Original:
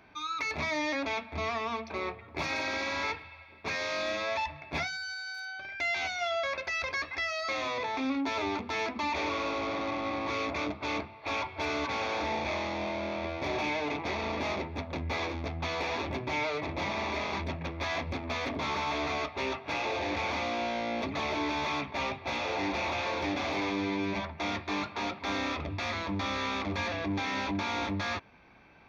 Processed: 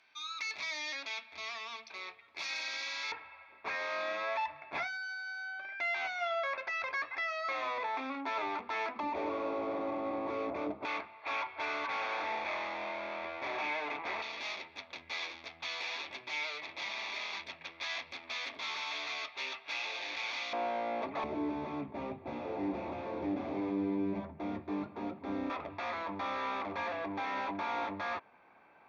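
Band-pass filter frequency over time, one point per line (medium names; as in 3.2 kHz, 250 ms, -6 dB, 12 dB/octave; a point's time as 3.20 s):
band-pass filter, Q 0.87
4.5 kHz
from 3.12 s 1.2 kHz
from 9.00 s 480 Hz
from 10.85 s 1.5 kHz
from 14.22 s 3.7 kHz
from 20.53 s 810 Hz
from 21.24 s 270 Hz
from 25.50 s 890 Hz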